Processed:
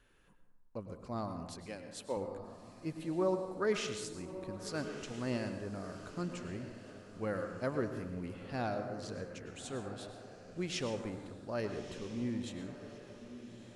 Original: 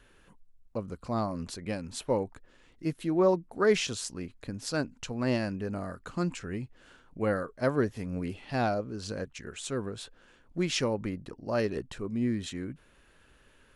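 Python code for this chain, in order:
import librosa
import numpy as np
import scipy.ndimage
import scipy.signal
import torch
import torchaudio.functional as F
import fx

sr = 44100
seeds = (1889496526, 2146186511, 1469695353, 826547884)

p1 = fx.bessel_highpass(x, sr, hz=320.0, order=2, at=(1.66, 2.17))
p2 = p1 + fx.echo_diffused(p1, sr, ms=1264, feedback_pct=41, wet_db=-12.0, dry=0)
p3 = fx.rev_plate(p2, sr, seeds[0], rt60_s=1.1, hf_ratio=0.45, predelay_ms=90, drr_db=7.0)
y = p3 * 10.0 ** (-8.5 / 20.0)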